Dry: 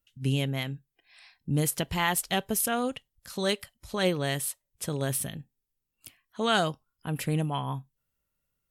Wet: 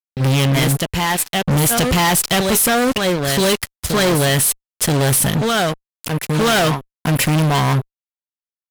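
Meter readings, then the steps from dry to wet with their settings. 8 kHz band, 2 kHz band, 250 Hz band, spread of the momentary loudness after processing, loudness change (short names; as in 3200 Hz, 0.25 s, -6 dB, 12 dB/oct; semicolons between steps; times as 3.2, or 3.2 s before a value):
+15.0 dB, +13.5 dB, +13.5 dB, 7 LU, +13.0 dB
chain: reverse echo 0.978 s -11.5 dB; fuzz box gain 41 dB, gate -46 dBFS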